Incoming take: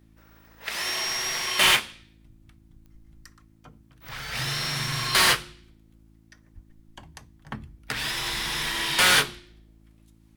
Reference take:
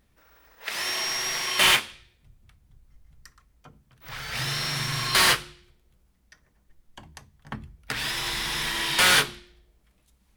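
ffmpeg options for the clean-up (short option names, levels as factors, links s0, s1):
-filter_complex "[0:a]adeclick=t=4,bandreject=f=54.6:t=h:w=4,bandreject=f=109.2:t=h:w=4,bandreject=f=163.8:t=h:w=4,bandreject=f=218.4:t=h:w=4,bandreject=f=273:t=h:w=4,bandreject=f=327.6:t=h:w=4,asplit=3[s0][s1][s2];[s0]afade=t=out:st=6.54:d=0.02[s3];[s1]highpass=f=140:w=0.5412,highpass=f=140:w=1.3066,afade=t=in:st=6.54:d=0.02,afade=t=out:st=6.66:d=0.02[s4];[s2]afade=t=in:st=6.66:d=0.02[s5];[s3][s4][s5]amix=inputs=3:normalize=0"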